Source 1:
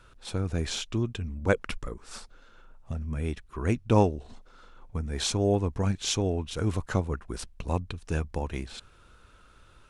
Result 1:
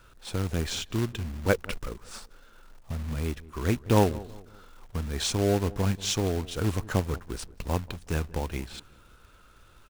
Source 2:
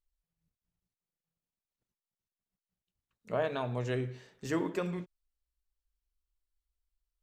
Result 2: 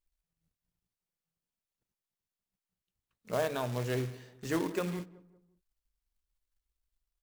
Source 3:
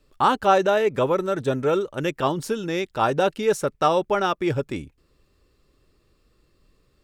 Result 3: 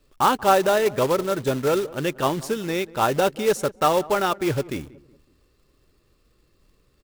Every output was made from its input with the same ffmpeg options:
-filter_complex "[0:a]acrusher=bits=3:mode=log:mix=0:aa=0.000001,asplit=2[s0][s1];[s1]adelay=185,lowpass=f=1200:p=1,volume=0.112,asplit=2[s2][s3];[s3]adelay=185,lowpass=f=1200:p=1,volume=0.42,asplit=2[s4][s5];[s5]adelay=185,lowpass=f=1200:p=1,volume=0.42[s6];[s0][s2][s4][s6]amix=inputs=4:normalize=0"

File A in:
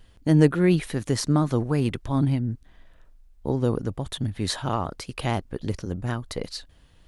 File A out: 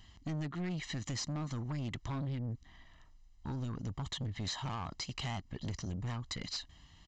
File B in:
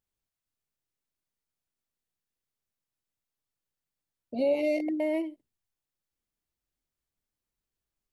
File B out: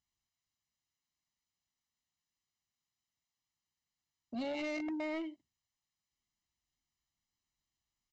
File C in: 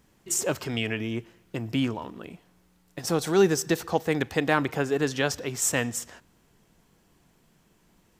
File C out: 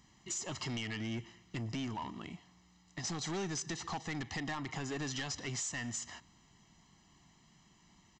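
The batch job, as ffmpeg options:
-af "highpass=f=54:p=1,highshelf=f=2300:g=7,aecho=1:1:1:0.74,acompressor=threshold=0.0562:ratio=6,aresample=16000,asoftclip=type=tanh:threshold=0.0355,aresample=44100,volume=0.596"

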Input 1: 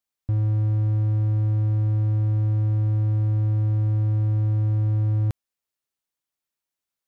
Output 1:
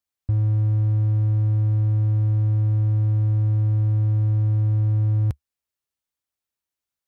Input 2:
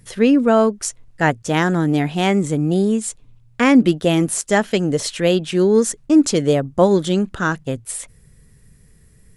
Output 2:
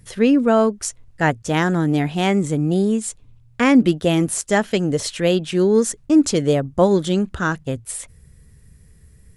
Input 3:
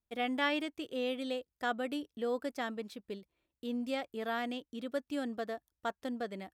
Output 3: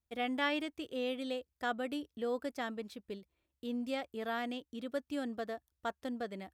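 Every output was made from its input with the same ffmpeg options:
-af "equalizer=f=72:w=1.7:g=9,volume=0.841"

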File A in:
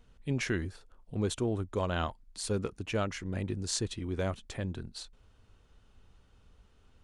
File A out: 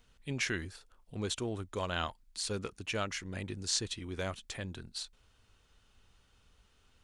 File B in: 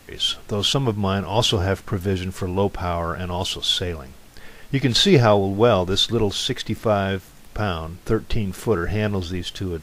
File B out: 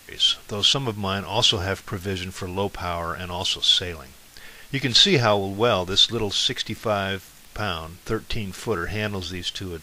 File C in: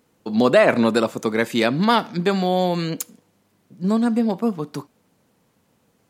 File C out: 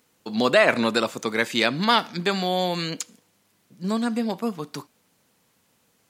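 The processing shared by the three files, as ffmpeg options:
-filter_complex "[0:a]acrossover=split=7200[s0][s1];[s1]acompressor=threshold=0.00355:ratio=4:attack=1:release=60[s2];[s0][s2]amix=inputs=2:normalize=0,tiltshelf=f=1200:g=-5.5,volume=0.891"

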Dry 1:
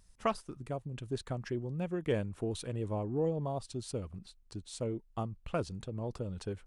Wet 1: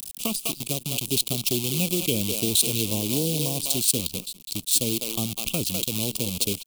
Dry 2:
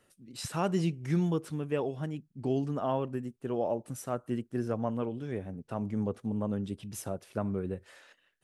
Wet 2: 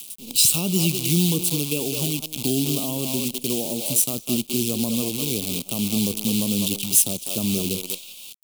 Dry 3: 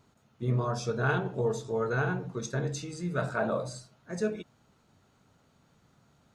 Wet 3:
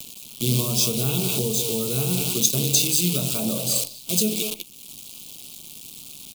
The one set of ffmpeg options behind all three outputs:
-filter_complex "[0:a]asplit=2[s0][s1];[s1]adelay=200,highpass=300,lowpass=3400,asoftclip=type=hard:threshold=0.0501,volume=0.447[s2];[s0][s2]amix=inputs=2:normalize=0,asplit=2[s3][s4];[s4]alimiter=level_in=1.26:limit=0.0631:level=0:latency=1:release=24,volume=0.794,volume=0.794[s5];[s3][s5]amix=inputs=2:normalize=0,acrusher=bits=7:dc=4:mix=0:aa=0.000001,asuperstop=centerf=1800:order=4:qfactor=1.7,equalizer=f=5600:w=1.2:g=-7.5,acrossover=split=370[s6][s7];[s7]acompressor=threshold=0.0224:ratio=5[s8];[s6][s8]amix=inputs=2:normalize=0,equalizer=f=230:w=0.64:g=11,aexciter=amount=15:drive=7.7:freq=2400,acompressor=mode=upward:threshold=0.0631:ratio=2.5,volume=0.562"

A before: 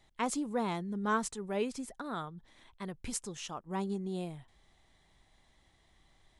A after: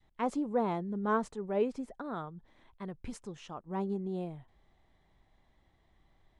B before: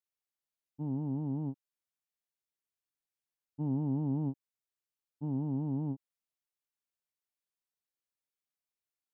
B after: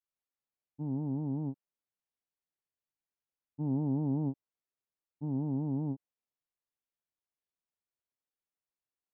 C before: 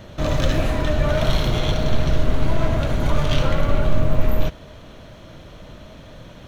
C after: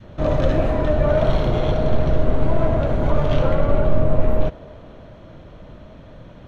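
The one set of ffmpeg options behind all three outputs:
-af "adynamicequalizer=threshold=0.0112:dfrequency=560:dqfactor=0.86:tfrequency=560:tqfactor=0.86:attack=5:release=100:ratio=0.375:range=3:mode=boostabove:tftype=bell,lowpass=f=1300:p=1"

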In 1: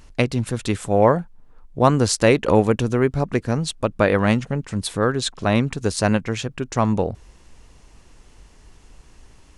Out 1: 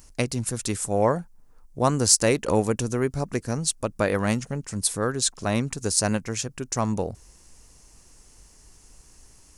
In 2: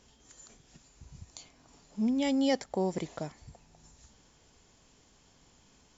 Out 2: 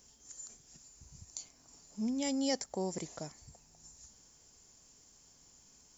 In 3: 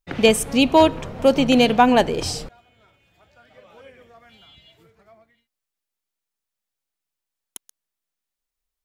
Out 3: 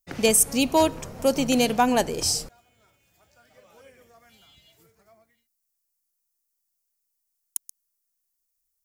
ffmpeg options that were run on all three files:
-af "aexciter=amount=5.2:drive=3.4:freq=4900,volume=0.501"

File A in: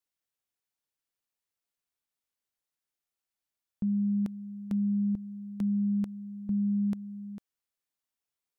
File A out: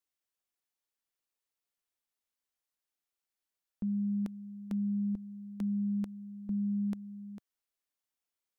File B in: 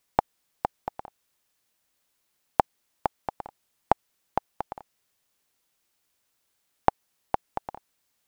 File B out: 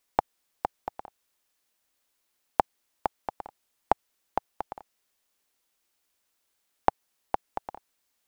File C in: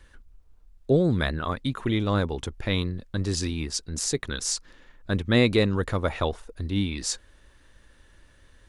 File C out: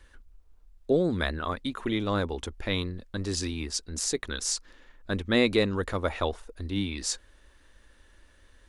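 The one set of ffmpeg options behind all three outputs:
-af "equalizer=f=130:w=2.6:g=-14.5,volume=0.841"

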